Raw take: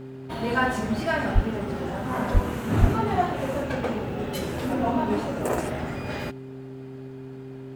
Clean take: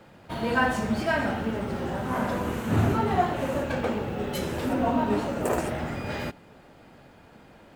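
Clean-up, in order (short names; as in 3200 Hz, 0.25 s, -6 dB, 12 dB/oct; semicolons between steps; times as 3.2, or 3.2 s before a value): de-hum 131.9 Hz, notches 3; 1.34–1.46 HPF 140 Hz 24 dB/oct; 2.33–2.45 HPF 140 Hz 24 dB/oct; 2.8–2.92 HPF 140 Hz 24 dB/oct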